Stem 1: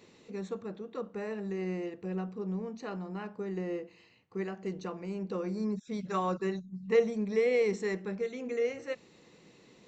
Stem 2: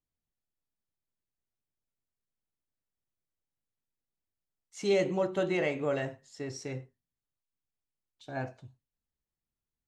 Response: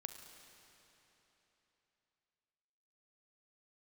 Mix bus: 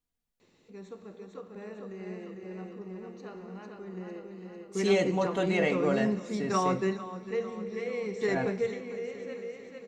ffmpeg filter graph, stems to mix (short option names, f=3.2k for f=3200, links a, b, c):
-filter_complex "[0:a]adelay=400,volume=1dB,asplit=3[a][b][c];[b]volume=-4.5dB[d];[c]volume=-12dB[e];[1:a]aecho=1:1:4.2:0.42,volume=-0.5dB,asplit=3[f][g][h];[g]volume=-4dB[i];[h]apad=whole_len=457681[j];[a][j]sidechaingate=range=-33dB:threshold=-57dB:ratio=16:detection=peak[k];[2:a]atrim=start_sample=2205[l];[d][i]amix=inputs=2:normalize=0[m];[m][l]afir=irnorm=-1:irlink=0[n];[e]aecho=0:1:450|900|1350|1800|2250|2700|3150|3600:1|0.56|0.314|0.176|0.0983|0.0551|0.0308|0.0173[o];[k][f][n][o]amix=inputs=4:normalize=0"